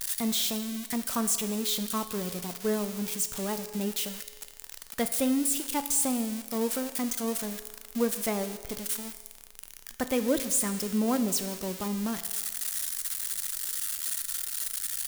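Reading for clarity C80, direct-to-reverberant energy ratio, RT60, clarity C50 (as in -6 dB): 12.5 dB, 9.5 dB, 1.5 s, 11.5 dB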